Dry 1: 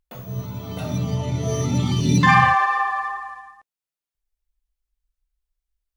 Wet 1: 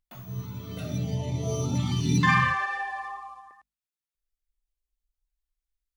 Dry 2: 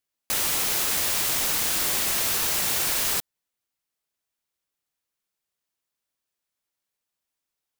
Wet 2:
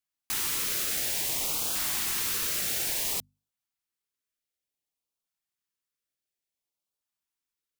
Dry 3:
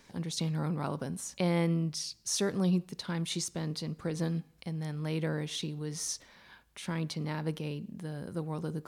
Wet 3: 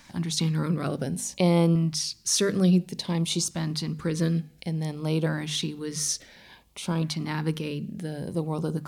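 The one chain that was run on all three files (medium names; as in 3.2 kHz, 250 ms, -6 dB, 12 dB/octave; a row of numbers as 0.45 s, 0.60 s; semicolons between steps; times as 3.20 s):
hum notches 50/100/150/200/250 Hz; LFO notch saw up 0.57 Hz 410–2100 Hz; normalise loudness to -27 LUFS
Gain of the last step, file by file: -5.0 dB, -5.0 dB, +8.0 dB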